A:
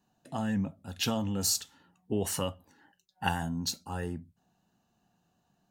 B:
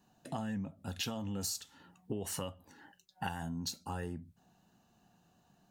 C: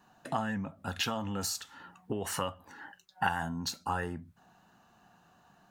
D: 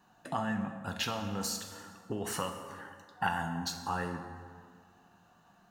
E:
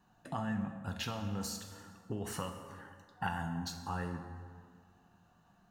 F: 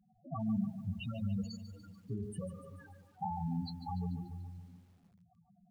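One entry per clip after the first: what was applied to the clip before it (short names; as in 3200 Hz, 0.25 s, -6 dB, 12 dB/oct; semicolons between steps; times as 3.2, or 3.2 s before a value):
compressor 5:1, threshold -41 dBFS, peak gain reduction 16 dB; gain +4.5 dB
bell 1300 Hz +11.5 dB 1.9 oct; gain +1.5 dB
plate-style reverb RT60 2 s, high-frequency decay 0.6×, DRR 5 dB; gain -2 dB
low shelf 160 Hz +11.5 dB; gain -6 dB
loudest bins only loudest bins 4; lo-fi delay 0.145 s, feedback 55%, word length 11-bit, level -12 dB; gain +3.5 dB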